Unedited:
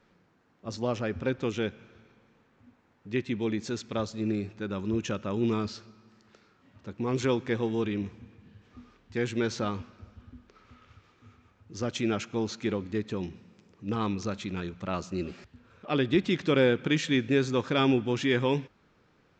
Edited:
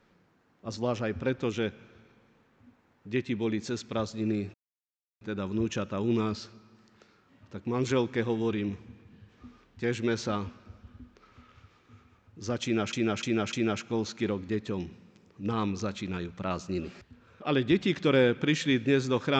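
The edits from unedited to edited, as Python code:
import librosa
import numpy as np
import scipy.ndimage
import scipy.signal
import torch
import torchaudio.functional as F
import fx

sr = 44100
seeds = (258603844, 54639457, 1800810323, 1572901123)

y = fx.edit(x, sr, fx.insert_silence(at_s=4.54, length_s=0.67),
    fx.repeat(start_s=11.96, length_s=0.3, count=4), tone=tone)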